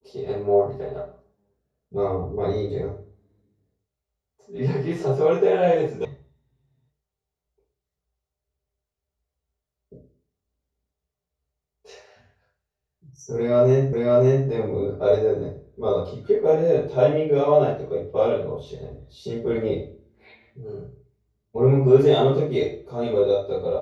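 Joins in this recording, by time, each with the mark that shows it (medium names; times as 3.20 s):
6.05 s: sound stops dead
13.93 s: repeat of the last 0.56 s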